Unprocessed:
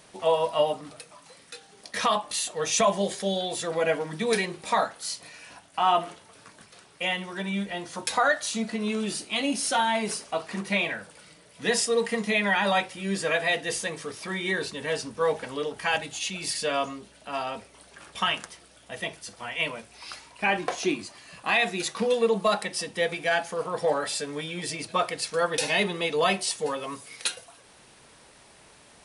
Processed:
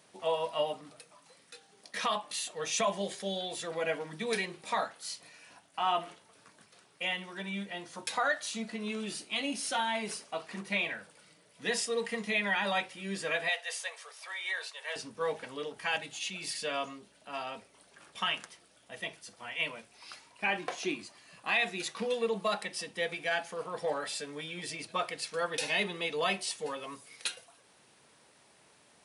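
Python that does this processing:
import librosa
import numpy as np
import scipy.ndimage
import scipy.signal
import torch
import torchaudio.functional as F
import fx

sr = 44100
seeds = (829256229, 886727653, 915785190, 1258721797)

y = fx.steep_highpass(x, sr, hz=570.0, slope=36, at=(13.49, 14.96))
y = scipy.signal.sosfilt(scipy.signal.butter(2, 110.0, 'highpass', fs=sr, output='sos'), y)
y = fx.dynamic_eq(y, sr, hz=2600.0, q=0.88, threshold_db=-41.0, ratio=4.0, max_db=4)
y = F.gain(torch.from_numpy(y), -8.5).numpy()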